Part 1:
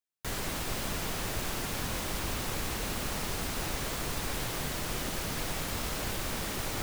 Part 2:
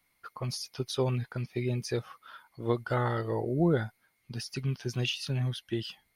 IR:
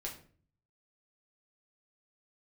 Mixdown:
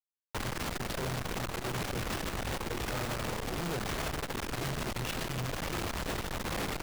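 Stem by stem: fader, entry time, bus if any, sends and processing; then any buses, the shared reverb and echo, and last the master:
+2.0 dB, 0.10 s, send −20.5 dB, brickwall limiter −26.5 dBFS, peak gain reduction 5.5 dB
−6.0 dB, 0.00 s, no send, mains-hum notches 50/100/150/200/250/300/350/400/450 Hz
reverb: on, RT60 0.45 s, pre-delay 6 ms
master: comparator with hysteresis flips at −35 dBFS; saturating transformer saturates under 65 Hz

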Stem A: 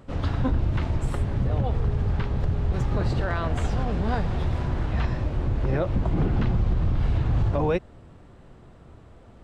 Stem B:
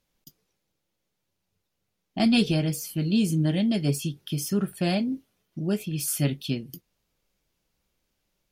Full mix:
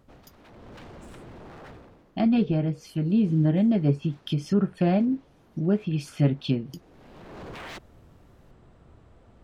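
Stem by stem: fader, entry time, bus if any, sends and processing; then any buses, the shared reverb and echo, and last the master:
−6.0 dB, 0.00 s, no send, wave folding −29.5 dBFS; automatic ducking −19 dB, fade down 0.45 s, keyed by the second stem
+2.5 dB, 0.00 s, no send, treble cut that deepens with the level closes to 1,400 Hz, closed at −23 dBFS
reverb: not used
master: speech leveller 2 s

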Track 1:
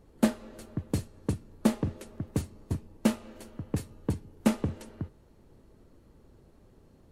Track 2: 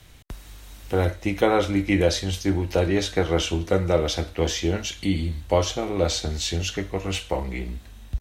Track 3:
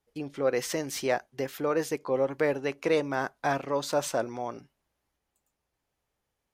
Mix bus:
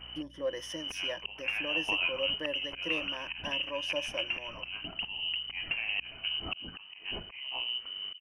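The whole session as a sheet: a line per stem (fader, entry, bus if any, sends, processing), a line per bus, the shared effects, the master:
−7.0 dB, 1.25 s, bus A, no send, no processing
+2.5 dB, 0.00 s, bus A, no send, low-pass filter 10,000 Hz; volume swells 771 ms
−7.0 dB, 0.00 s, no bus, no send, EQ curve with evenly spaced ripples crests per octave 1.2, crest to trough 16 dB; mains hum 60 Hz, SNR 20 dB; automatic ducking −8 dB, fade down 0.75 s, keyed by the second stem
bus A: 0.0 dB, voice inversion scrambler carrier 3,000 Hz; downward compressor 4 to 1, threshold −30 dBFS, peak gain reduction 14 dB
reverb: not used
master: no processing

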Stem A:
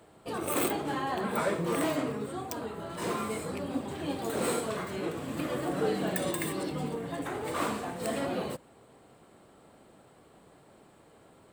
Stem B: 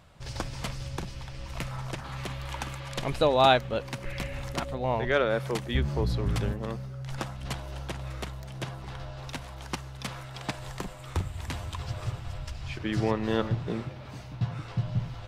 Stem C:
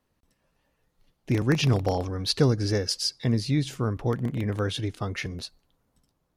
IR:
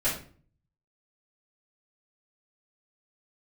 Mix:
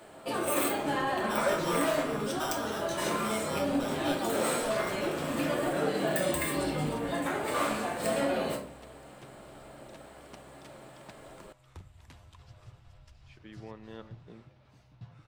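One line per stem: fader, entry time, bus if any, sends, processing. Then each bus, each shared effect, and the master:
+2.5 dB, 0.00 s, send −5 dB, low-shelf EQ 250 Hz −10.5 dB; downward compressor 2 to 1, threshold −40 dBFS, peak gain reduction 8 dB
−18.5 dB, 0.60 s, no send, no processing
−20.0 dB, 0.00 s, send −7 dB, ring modulator with a square carrier 1,100 Hz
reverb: on, RT60 0.45 s, pre-delay 3 ms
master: no processing

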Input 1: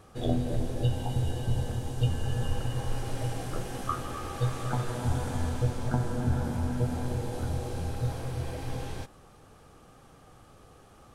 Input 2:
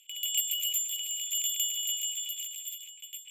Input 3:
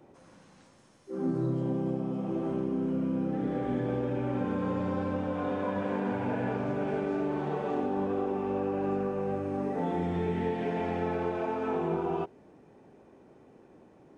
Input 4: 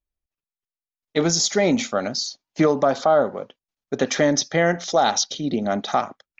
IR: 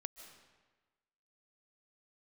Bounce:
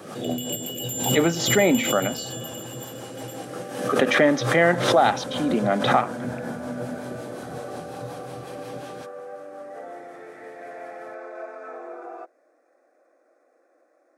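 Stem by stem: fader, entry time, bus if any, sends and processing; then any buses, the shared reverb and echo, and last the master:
+2.0 dB, 0.00 s, no send, rotating-speaker cabinet horn 5.5 Hz
−3.5 dB, 0.15 s, no send, no processing
+0.5 dB, 0.00 s, no send, Butterworth high-pass 380 Hz 36 dB per octave; phaser with its sweep stopped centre 610 Hz, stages 8
0.0 dB, 0.00 s, muted 0:02.39–0:03.81, no send, high shelf with overshoot 3,800 Hz −13.5 dB, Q 1.5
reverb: not used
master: high-pass filter 160 Hz 24 dB per octave; background raised ahead of every attack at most 63 dB per second

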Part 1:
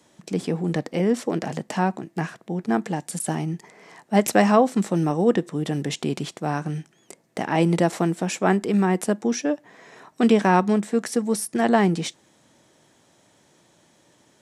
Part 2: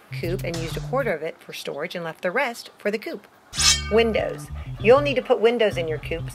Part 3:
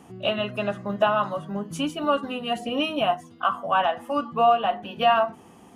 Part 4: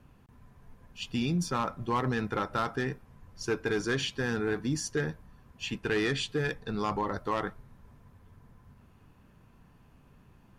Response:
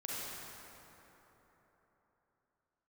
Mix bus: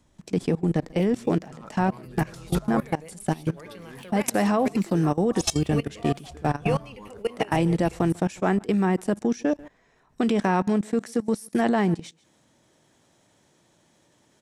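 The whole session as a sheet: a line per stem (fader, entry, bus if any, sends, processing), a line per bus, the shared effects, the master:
+2.5 dB, 0.00 s, no send, echo send −23 dB, no processing
−10.0 dB, 1.80 s, no send, no echo send, graphic EQ with 15 bands 630 Hz −9 dB, 1,600 Hz −8 dB, 10,000 Hz +10 dB; automatic gain control gain up to 10.5 dB
−11.5 dB, 1.60 s, no send, no echo send, low-pass filter 1,100 Hz
+0.5 dB, 0.00 s, no send, no echo send, running median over 9 samples; downward compressor 3 to 1, threshold −36 dBFS, peak gain reduction 8.5 dB; parametric band 230 Hz +4 dB 0.77 octaves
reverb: not used
echo: single-tap delay 142 ms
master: low-shelf EQ 94 Hz +7.5 dB; output level in coarse steps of 21 dB

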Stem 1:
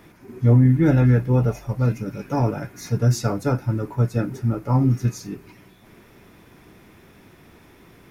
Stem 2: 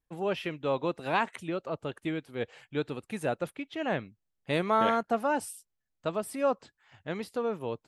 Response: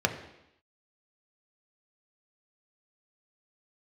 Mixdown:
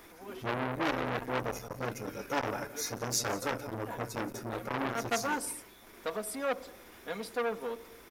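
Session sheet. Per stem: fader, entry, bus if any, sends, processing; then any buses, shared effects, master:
−2.0 dB, 0.00 s, send −23.5 dB, echo send −16 dB, parametric band 140 Hz −14.5 dB 1.7 octaves
0:04.82 −16.5 dB → 0:05.05 −4.5 dB, 0.00 s, send −17.5 dB, no echo send, low-shelf EQ 270 Hz −8.5 dB; comb filter 4.2 ms, depth 83%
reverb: on, RT60 0.85 s, pre-delay 3 ms
echo: single-tap delay 175 ms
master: high-shelf EQ 5,400 Hz +7 dB; saturating transformer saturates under 2,300 Hz

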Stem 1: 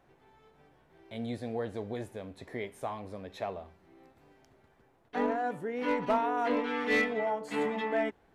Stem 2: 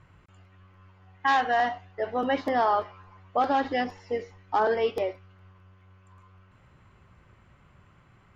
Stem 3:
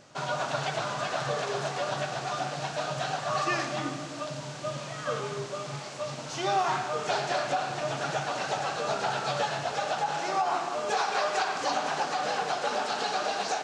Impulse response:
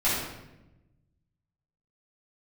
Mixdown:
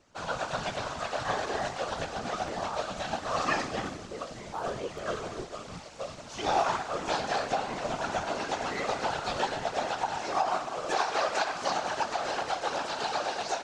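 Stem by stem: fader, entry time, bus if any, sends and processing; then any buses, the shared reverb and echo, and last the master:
−14.5 dB, 1.80 s, send −11 dB, no processing
−12.5 dB, 0.00 s, no send, no processing
+1.0 dB, 0.00 s, no send, expander for the loud parts 1.5 to 1, over −46 dBFS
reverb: on, RT60 0.95 s, pre-delay 4 ms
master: random phases in short frames

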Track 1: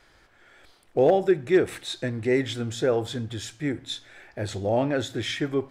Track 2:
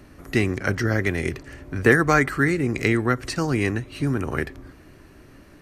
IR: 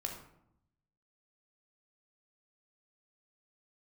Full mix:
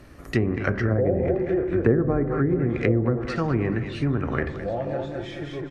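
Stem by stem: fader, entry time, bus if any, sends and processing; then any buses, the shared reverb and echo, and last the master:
−2.0 dB, 0.00 s, send −8 dB, echo send −7 dB, high-shelf EQ 2,100 Hz −12 dB; comb filter 5.8 ms, depth 54%; automatic ducking −10 dB, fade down 1.50 s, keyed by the second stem
−3.5 dB, 0.00 s, send −4.5 dB, echo send −11 dB, no processing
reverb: on, RT60 0.75 s, pre-delay 14 ms
echo: repeating echo 211 ms, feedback 41%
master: treble cut that deepens with the level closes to 480 Hz, closed at −15.5 dBFS

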